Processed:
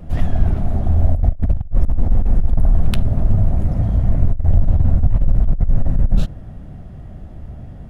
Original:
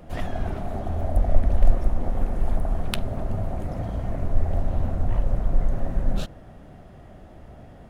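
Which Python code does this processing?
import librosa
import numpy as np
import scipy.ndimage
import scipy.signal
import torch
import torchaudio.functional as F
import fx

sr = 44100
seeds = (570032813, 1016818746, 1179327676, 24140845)

y = fx.bass_treble(x, sr, bass_db=13, treble_db=0)
y = fx.over_compress(y, sr, threshold_db=-8.0, ratio=-0.5)
y = F.gain(torch.from_numpy(y), -2.5).numpy()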